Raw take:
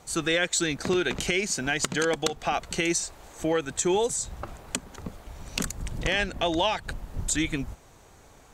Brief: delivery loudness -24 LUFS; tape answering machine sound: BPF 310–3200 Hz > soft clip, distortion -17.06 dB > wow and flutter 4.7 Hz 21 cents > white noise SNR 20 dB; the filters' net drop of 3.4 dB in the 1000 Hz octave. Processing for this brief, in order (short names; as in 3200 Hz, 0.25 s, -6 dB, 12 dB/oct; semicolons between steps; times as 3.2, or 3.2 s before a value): BPF 310–3200 Hz; bell 1000 Hz -4.5 dB; soft clip -21 dBFS; wow and flutter 4.7 Hz 21 cents; white noise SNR 20 dB; gain +8.5 dB